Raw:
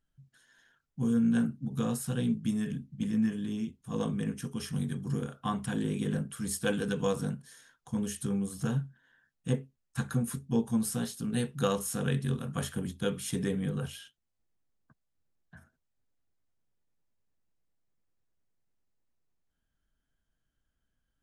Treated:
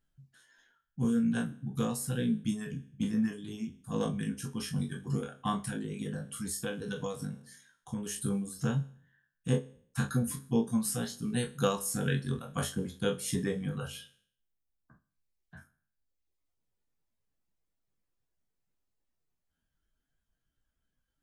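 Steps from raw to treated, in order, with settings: spectral trails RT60 0.57 s; reverb removal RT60 1.2 s; 5.64–8.06 compressor 5:1, threshold -33 dBFS, peak gain reduction 9 dB

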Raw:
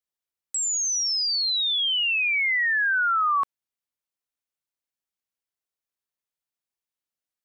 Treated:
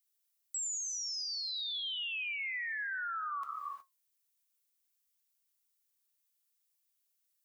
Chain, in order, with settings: non-linear reverb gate 0.39 s flat, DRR 11.5 dB; flange 0.58 Hz, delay 7.4 ms, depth 2.8 ms, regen -69%; compressor, threshold -31 dBFS, peak gain reduction 8 dB; tilt +4.5 dB/oct; limiter -32.5 dBFS, peak gain reduction 19 dB

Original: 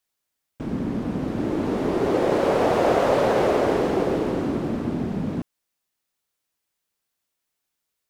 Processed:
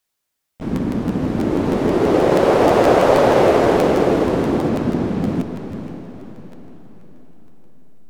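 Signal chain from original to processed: 4.69–5.22 LPF 7000 Hz; in parallel at -10 dB: backlash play -22 dBFS; on the sum: diffused feedback echo 0.511 s, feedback 44%, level -9 dB; crackling interface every 0.16 s, samples 512, repeat, from 0.59; gain +4 dB

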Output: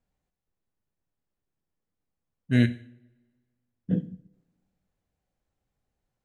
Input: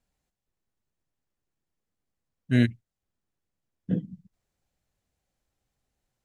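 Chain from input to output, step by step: two-slope reverb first 0.55 s, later 1.6 s, from -20 dB, DRR 11.5 dB; mismatched tape noise reduction decoder only

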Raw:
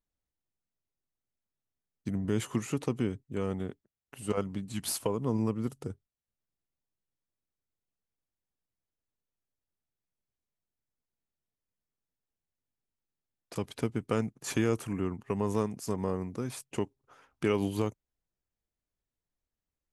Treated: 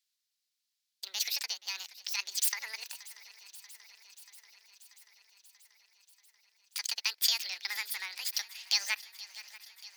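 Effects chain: HPF 94 Hz; bell 940 Hz +11 dB 1.7 oct; in parallel at +1.5 dB: compressor, threshold -36 dBFS, peak gain reduction 16.5 dB; on the sum: high-pass sweep 2300 Hz -> 670 Hz, 17.69–18.24; on a send: swung echo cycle 1.271 s, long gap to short 3:1, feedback 69%, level -19 dB; on the sum: speed mistake 7.5 ips tape played at 15 ips; gain +2.5 dB

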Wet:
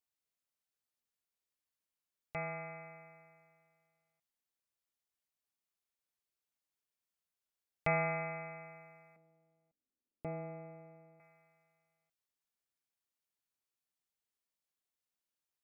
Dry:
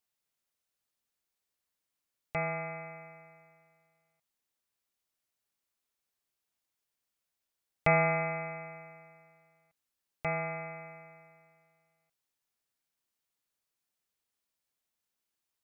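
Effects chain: 9.16–11.2 EQ curve 150 Hz 0 dB, 250 Hz +13 dB, 1600 Hz -14 dB; gain -7 dB

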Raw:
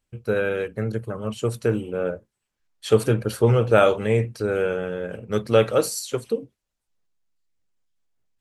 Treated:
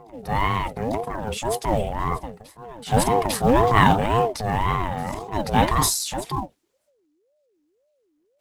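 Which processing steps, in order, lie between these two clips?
reverse echo 0.848 s -22.5 dB; transient shaper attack -7 dB, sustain +8 dB; in parallel at -8 dB: short-mantissa float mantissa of 2-bit; on the sum: ring modulator with a swept carrier 450 Hz, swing 35%, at 1.9 Hz; gain +1 dB

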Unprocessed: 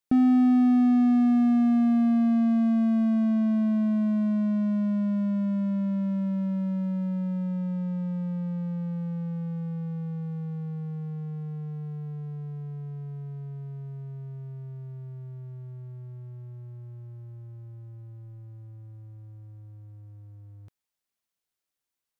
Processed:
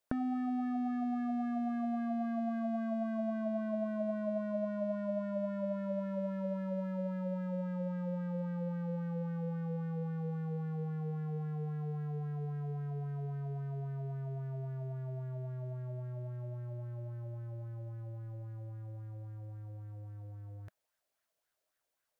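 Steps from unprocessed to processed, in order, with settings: thirty-one-band EQ 200 Hz -6 dB, 630 Hz +10 dB, 1600 Hz +3 dB; compressor, threshold -35 dBFS, peak gain reduction 15 dB; LFO bell 3.7 Hz 470–1700 Hz +10 dB

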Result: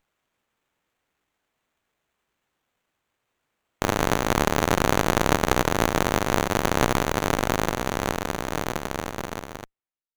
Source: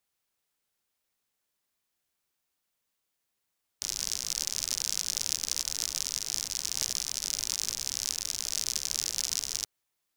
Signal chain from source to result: ending faded out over 3.34 s; running maximum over 9 samples; gain +7.5 dB

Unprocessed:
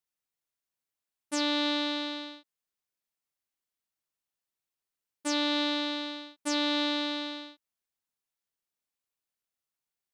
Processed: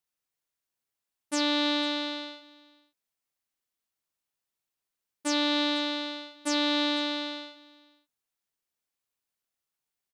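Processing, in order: echo 0.502 s -23 dB; gain +2 dB

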